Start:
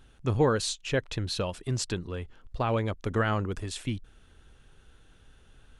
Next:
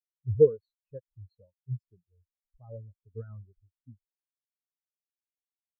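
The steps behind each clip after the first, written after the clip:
every bin expanded away from the loudest bin 4 to 1
level +4 dB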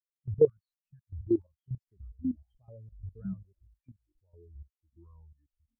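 output level in coarse steps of 16 dB
time-frequency box erased 0:00.47–0:01.44, 210–1,100 Hz
delay with pitch and tempo change per echo 755 ms, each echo −5 semitones, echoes 3, each echo −6 dB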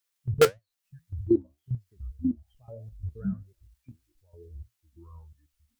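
in parallel at −6.5 dB: wrap-around overflow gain 14.5 dB
on the sum: flanger 1.7 Hz, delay 8.3 ms, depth 8 ms, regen +64%
one half of a high-frequency compander encoder only
level +6.5 dB

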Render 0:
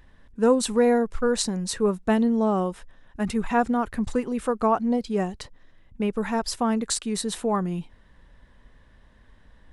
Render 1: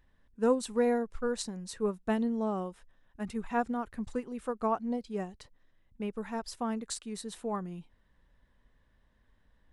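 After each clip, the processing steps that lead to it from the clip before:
expander for the loud parts 1.5 to 1, over −29 dBFS
level −6.5 dB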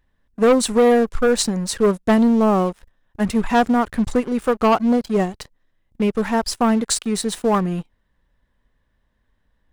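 leveller curve on the samples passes 3
level +6.5 dB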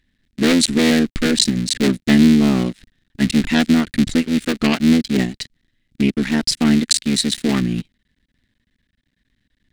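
sub-harmonics by changed cycles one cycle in 3, muted
graphic EQ with 10 bands 125 Hz +3 dB, 250 Hz +10 dB, 500 Hz −5 dB, 1,000 Hz −11 dB, 2,000 Hz +9 dB, 4,000 Hz +11 dB, 8,000 Hz +5 dB
level −2 dB

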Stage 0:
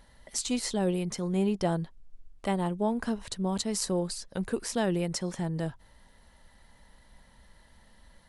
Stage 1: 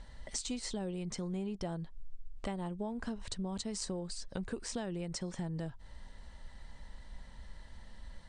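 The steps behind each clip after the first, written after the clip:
elliptic low-pass filter 8,800 Hz, stop band 40 dB
low-shelf EQ 92 Hz +10 dB
downward compressor 6 to 1, threshold −38 dBFS, peak gain reduction 14.5 dB
level +2 dB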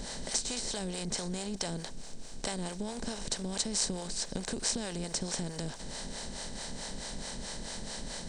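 compressor on every frequency bin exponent 0.4
high-shelf EQ 2,900 Hz +8.5 dB
two-band tremolo in antiphase 4.6 Hz, depth 70%, crossover 450 Hz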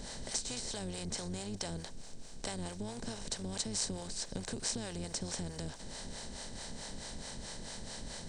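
sub-octave generator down 1 octave, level −5 dB
level −4.5 dB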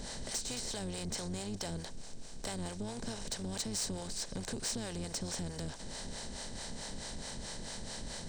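soft clipping −31.5 dBFS, distortion −16 dB
level +2 dB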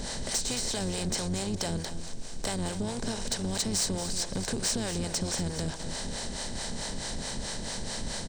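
single-tap delay 234 ms −11 dB
level +7.5 dB

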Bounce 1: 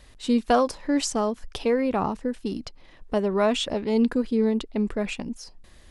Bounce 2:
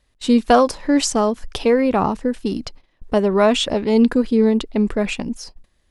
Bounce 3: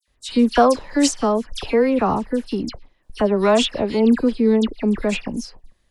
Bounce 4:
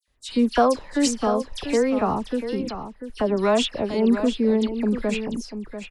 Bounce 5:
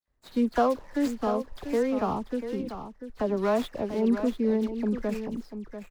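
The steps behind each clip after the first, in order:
noise gate −44 dBFS, range −20 dB; level +7 dB
all-pass dispersion lows, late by 80 ms, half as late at 2,500 Hz; level −1 dB
single-tap delay 691 ms −10 dB; level −4 dB
running median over 15 samples; level −5 dB

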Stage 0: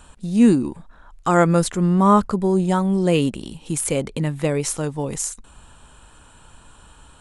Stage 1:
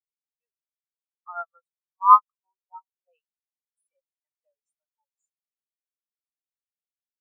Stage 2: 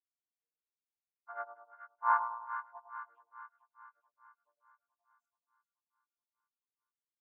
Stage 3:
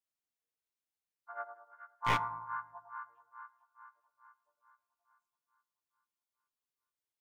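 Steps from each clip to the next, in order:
high-pass filter 740 Hz 24 dB per octave; every bin expanded away from the loudest bin 4 to 1; level +4.5 dB
channel vocoder with a chord as carrier major triad, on A#3; brickwall limiter −8.5 dBFS, peak gain reduction 8 dB; echo with a time of its own for lows and highs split 1,100 Hz, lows 104 ms, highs 430 ms, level −8 dB; level −9 dB
wavefolder on the positive side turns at −26.5 dBFS; convolution reverb RT60 1.0 s, pre-delay 4 ms, DRR 16 dB

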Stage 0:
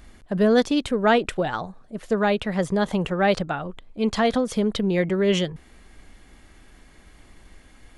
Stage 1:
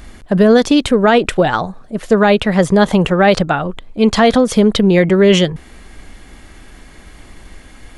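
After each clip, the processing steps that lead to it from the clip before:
boost into a limiter +12.5 dB
level −1 dB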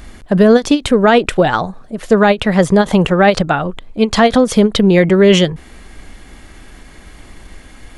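every ending faded ahead of time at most 330 dB per second
level +1 dB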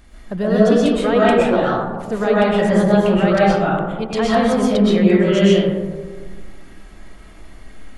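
convolution reverb RT60 1.5 s, pre-delay 85 ms, DRR −7.5 dB
level −13 dB

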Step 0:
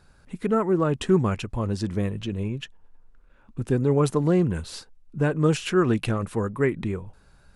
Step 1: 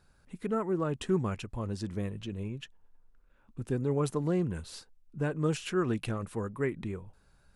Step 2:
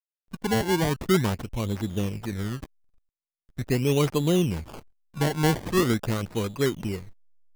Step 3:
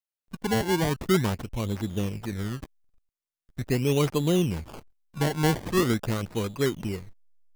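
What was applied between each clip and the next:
high-shelf EQ 8,400 Hz +4 dB; level −8.5 dB
sample-and-hold swept by an LFO 24×, swing 100% 0.42 Hz; slack as between gear wheels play −46 dBFS; level +7 dB
one scale factor per block 7 bits; level −1 dB

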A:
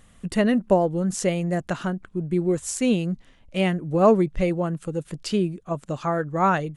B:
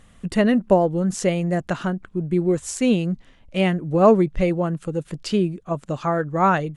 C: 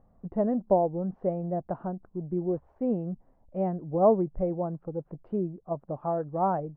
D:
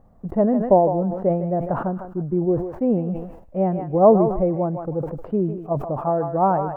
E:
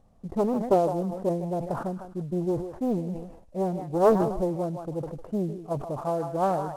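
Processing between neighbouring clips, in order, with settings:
high-shelf EQ 8,900 Hz −8 dB; level +2.5 dB
transistor ladder low-pass 930 Hz, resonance 45%; level −1.5 dB
feedback echo with a high-pass in the loop 154 ms, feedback 38%, high-pass 900 Hz, level −6 dB; level that may fall only so fast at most 74 dB per second; level +7.5 dB
variable-slope delta modulation 64 kbit/s; highs frequency-modulated by the lows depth 0.49 ms; level −6.5 dB

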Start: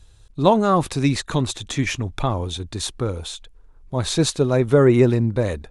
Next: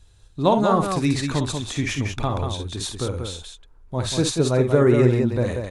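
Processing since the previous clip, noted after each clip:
multi-tap delay 47/57/188 ms −9.5/−10/−5.5 dB
level −3 dB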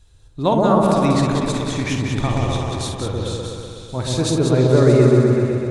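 fade-out on the ending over 0.83 s
echo whose low-pass opens from repeat to repeat 125 ms, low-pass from 750 Hz, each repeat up 1 octave, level 0 dB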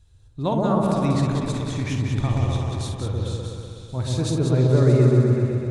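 parametric band 98 Hz +8.5 dB 1.7 octaves
level −7.5 dB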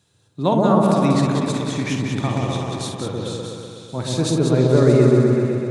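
high-pass filter 150 Hz 24 dB per octave
level +5.5 dB

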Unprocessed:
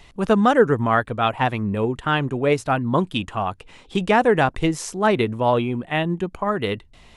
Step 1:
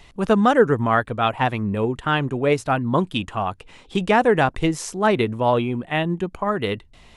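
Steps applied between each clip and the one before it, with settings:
no processing that can be heard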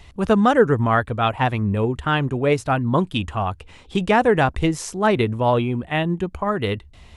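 parametric band 72 Hz +13.5 dB 0.87 octaves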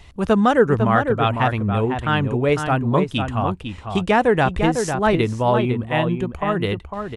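slap from a distant wall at 86 metres, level −6 dB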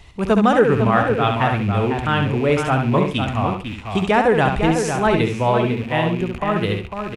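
loose part that buzzes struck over −34 dBFS, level −26 dBFS
repeating echo 68 ms, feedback 23%, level −6 dB

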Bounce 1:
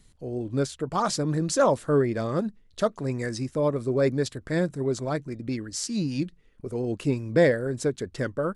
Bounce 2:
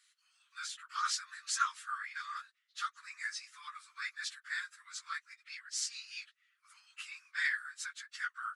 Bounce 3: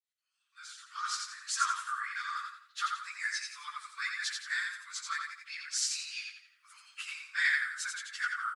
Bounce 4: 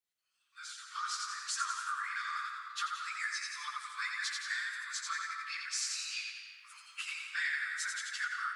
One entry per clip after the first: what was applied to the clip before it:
random phases in long frames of 50 ms; Butterworth high-pass 1,200 Hz 72 dB per octave; high-shelf EQ 8,900 Hz −11 dB; level −1 dB
fade in at the beginning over 2.29 s; on a send: repeating echo 86 ms, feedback 36%, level −4 dB; on the sum: level +4 dB
downward compressor 2.5 to 1, threshold −38 dBFS, peak gain reduction 9.5 dB; on a send at −5.5 dB: convolution reverb RT60 2.2 s, pre-delay 138 ms; on the sum: level +2 dB

